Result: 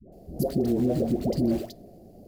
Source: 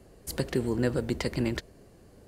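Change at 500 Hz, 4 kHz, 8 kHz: +3.5 dB, -6.0 dB, no reading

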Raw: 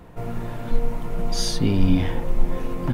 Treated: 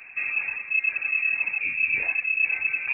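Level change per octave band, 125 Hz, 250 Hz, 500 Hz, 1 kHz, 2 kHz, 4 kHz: under -30 dB, under -30 dB, under -20 dB, -12.0 dB, +20.0 dB, under -25 dB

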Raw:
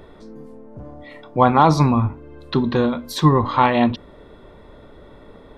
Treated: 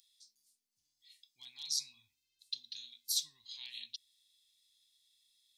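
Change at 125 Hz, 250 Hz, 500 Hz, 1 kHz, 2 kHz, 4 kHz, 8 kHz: under -40 dB, under -40 dB, under -40 dB, under -40 dB, -30.5 dB, -6.0 dB, +0.5 dB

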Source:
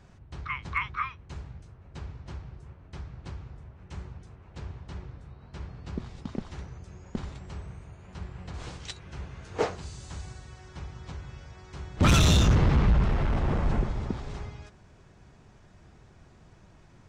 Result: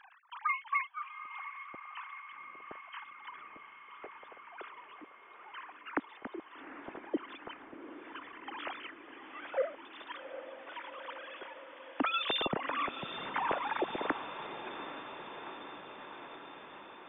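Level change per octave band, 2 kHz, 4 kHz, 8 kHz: -1.5 dB, -4.5 dB, under -40 dB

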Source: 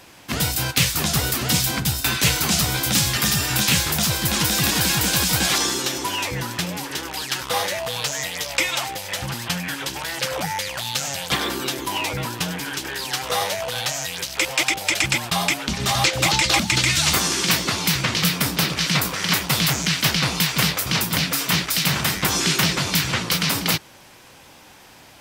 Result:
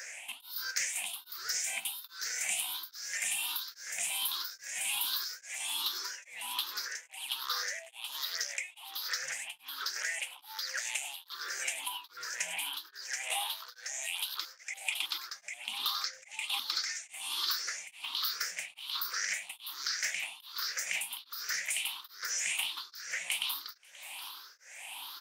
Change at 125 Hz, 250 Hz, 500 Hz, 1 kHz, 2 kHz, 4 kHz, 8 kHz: under -40 dB, under -40 dB, -26.5 dB, -18.0 dB, -13.5 dB, -13.5 dB, -13.0 dB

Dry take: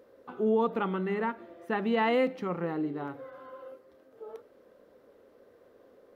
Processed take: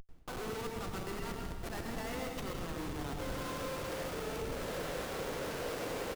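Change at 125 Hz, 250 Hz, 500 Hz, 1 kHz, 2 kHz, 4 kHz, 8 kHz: -1.0 dB, -9.0 dB, -8.0 dB, -7.0 dB, -4.5 dB, +2.5 dB, no reading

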